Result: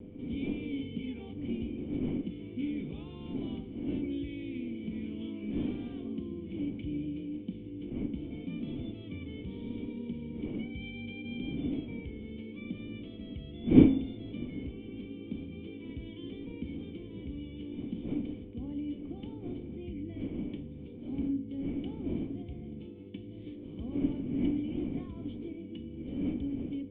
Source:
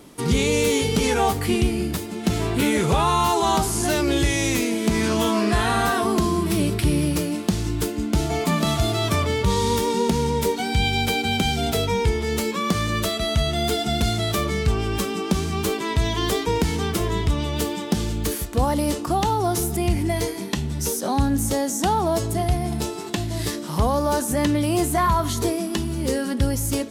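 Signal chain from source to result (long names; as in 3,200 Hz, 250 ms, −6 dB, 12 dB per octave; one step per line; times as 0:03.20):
wind on the microphone 530 Hz −19 dBFS
formant resonators in series i
hum with harmonics 100 Hz, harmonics 5, −43 dBFS −2 dB per octave
pitch vibrato 0.73 Hz 19 cents
hum removal 53.34 Hz, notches 38
level −9 dB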